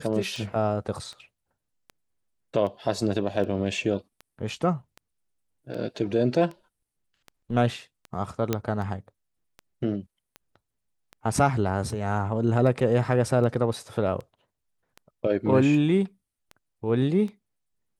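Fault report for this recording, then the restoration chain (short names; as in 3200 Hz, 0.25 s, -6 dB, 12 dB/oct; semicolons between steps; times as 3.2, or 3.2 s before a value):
tick 78 rpm
8.53 pop -10 dBFS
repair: de-click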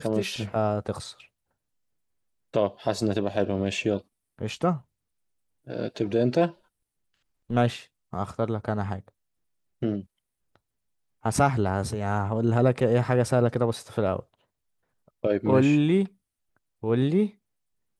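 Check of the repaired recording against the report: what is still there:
none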